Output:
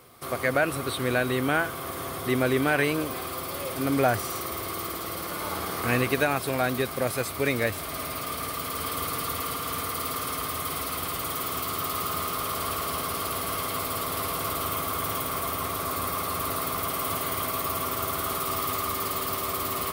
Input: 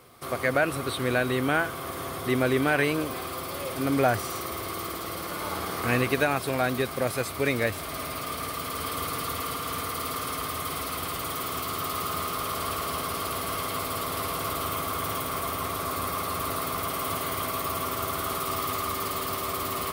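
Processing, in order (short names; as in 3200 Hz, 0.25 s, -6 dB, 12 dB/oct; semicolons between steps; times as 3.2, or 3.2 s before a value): high shelf 11000 Hz +5 dB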